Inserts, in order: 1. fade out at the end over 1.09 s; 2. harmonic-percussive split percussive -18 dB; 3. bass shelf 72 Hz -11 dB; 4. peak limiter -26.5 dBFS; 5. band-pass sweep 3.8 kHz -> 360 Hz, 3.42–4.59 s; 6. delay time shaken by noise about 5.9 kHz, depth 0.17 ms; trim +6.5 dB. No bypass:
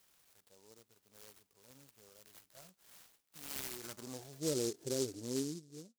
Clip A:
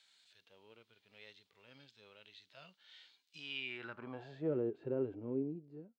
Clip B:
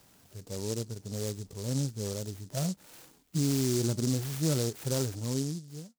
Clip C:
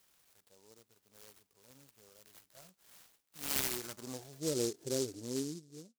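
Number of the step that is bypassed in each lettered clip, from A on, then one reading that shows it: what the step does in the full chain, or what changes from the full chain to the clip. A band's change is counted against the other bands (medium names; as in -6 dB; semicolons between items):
6, 2 kHz band +6.5 dB; 5, 125 Hz band +12.0 dB; 4, crest factor change +4.0 dB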